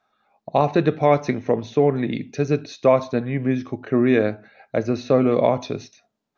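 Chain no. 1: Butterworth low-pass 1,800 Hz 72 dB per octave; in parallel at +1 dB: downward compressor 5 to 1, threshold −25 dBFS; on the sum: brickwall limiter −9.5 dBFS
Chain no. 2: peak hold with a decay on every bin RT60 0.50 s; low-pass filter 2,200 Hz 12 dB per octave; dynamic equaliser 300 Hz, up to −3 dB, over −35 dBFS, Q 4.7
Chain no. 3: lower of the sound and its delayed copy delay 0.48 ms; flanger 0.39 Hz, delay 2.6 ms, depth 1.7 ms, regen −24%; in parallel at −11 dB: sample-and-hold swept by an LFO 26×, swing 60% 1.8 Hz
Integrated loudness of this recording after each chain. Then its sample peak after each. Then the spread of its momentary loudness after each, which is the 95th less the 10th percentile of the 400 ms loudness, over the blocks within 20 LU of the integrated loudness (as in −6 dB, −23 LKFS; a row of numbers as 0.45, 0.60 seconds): −22.0, −20.5, −24.0 LKFS; −9.5, −3.5, −8.0 dBFS; 7, 8, 8 LU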